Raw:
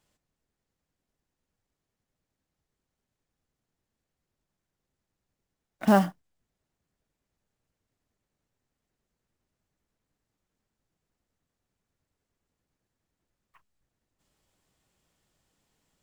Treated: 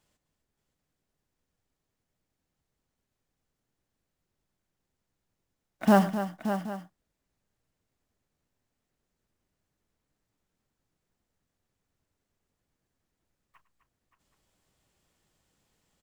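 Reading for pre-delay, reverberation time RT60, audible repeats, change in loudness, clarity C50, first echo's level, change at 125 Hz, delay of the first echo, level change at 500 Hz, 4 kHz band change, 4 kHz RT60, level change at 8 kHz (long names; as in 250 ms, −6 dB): no reverb audible, no reverb audible, 4, −2.0 dB, no reverb audible, −16.5 dB, +1.0 dB, 104 ms, +1.0 dB, +1.0 dB, no reverb audible, +1.0 dB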